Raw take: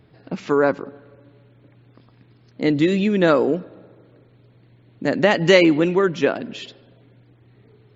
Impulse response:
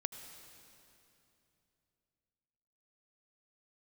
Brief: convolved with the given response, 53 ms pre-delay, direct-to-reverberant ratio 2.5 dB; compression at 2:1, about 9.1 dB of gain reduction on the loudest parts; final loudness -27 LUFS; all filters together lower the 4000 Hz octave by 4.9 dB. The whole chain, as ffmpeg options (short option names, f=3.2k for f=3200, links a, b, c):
-filter_complex "[0:a]equalizer=f=4k:t=o:g=-7.5,acompressor=threshold=-26dB:ratio=2,asplit=2[a][b];[1:a]atrim=start_sample=2205,adelay=53[c];[b][c]afir=irnorm=-1:irlink=0,volume=-2dB[d];[a][d]amix=inputs=2:normalize=0,volume=-2.5dB"